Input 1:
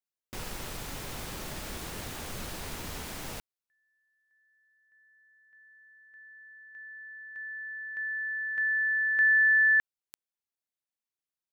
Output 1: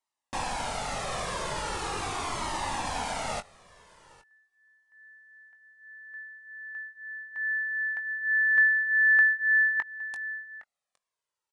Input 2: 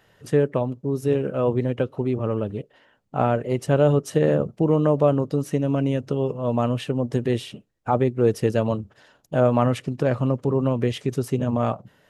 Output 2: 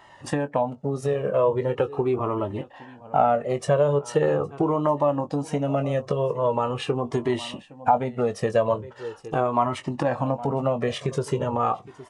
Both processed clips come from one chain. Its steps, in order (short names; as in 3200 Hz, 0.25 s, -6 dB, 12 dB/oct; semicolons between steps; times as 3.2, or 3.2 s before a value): bell 900 Hz +10.5 dB 1.3 oct; notch 1500 Hz, Q 18; doubler 21 ms -10.5 dB; echo 0.813 s -23 dB; downsampling 22050 Hz; low shelf 130 Hz -7.5 dB; compressor 2.5:1, threshold -26 dBFS; cascading flanger falling 0.41 Hz; gain +8.5 dB